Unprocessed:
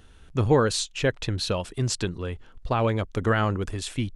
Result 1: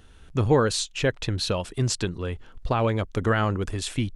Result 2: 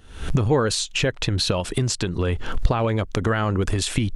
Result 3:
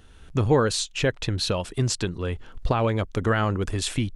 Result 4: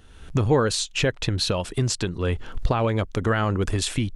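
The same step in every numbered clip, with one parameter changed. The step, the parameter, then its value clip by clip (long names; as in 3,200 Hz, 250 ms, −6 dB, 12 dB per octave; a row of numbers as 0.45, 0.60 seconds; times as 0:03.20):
camcorder AGC, rising by: 5.6, 89, 14, 34 dB per second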